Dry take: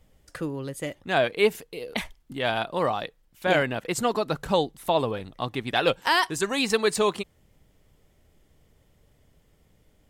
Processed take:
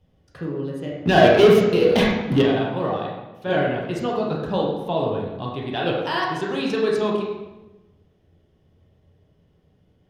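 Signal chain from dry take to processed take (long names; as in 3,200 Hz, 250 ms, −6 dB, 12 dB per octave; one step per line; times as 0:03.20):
0:01.04–0:02.42: leveller curve on the samples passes 5
convolution reverb RT60 1.1 s, pre-delay 3 ms, DRR −3.5 dB
level −14 dB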